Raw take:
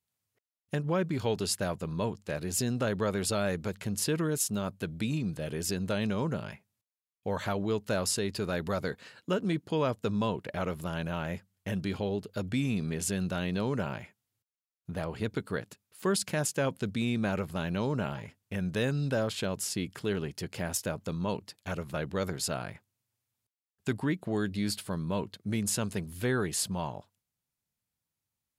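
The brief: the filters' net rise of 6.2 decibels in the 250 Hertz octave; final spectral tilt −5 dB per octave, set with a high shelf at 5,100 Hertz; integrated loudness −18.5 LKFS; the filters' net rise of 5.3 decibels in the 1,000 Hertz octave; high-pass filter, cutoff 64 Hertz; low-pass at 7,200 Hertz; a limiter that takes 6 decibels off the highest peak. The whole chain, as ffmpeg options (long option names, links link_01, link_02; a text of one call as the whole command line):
ffmpeg -i in.wav -af "highpass=64,lowpass=7200,equalizer=frequency=250:width_type=o:gain=8,equalizer=frequency=1000:width_type=o:gain=6,highshelf=frequency=5100:gain=7.5,volume=11.5dB,alimiter=limit=-6dB:level=0:latency=1" out.wav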